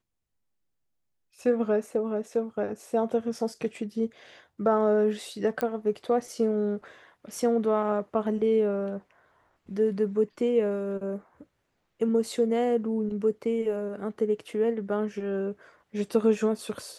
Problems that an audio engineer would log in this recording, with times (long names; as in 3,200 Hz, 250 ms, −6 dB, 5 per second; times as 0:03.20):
0:05.61: click −14 dBFS